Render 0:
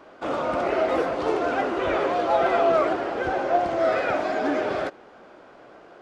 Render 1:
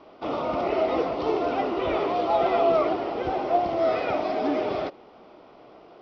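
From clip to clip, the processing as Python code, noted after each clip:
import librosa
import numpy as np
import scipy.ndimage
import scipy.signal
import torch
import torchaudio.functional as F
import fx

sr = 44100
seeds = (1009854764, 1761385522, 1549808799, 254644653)

y = scipy.signal.sosfilt(scipy.signal.cheby1(5, 1.0, 5500.0, 'lowpass', fs=sr, output='sos'), x)
y = fx.peak_eq(y, sr, hz=1600.0, db=-13.5, octaves=0.33)
y = fx.notch(y, sr, hz=540.0, q=14.0)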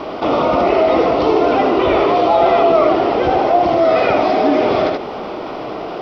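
y = x + 10.0 ** (-6.5 / 20.0) * np.pad(x, (int(78 * sr / 1000.0), 0))[:len(x)]
y = fx.env_flatten(y, sr, amount_pct=50)
y = y * librosa.db_to_amplitude(7.5)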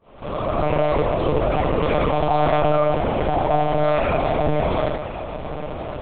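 y = fx.fade_in_head(x, sr, length_s=0.62)
y = y + 10.0 ** (-13.0 / 20.0) * np.pad(y, (int(1061 * sr / 1000.0), 0))[:len(y)]
y = fx.lpc_monotone(y, sr, seeds[0], pitch_hz=150.0, order=10)
y = y * librosa.db_to_amplitude(-6.0)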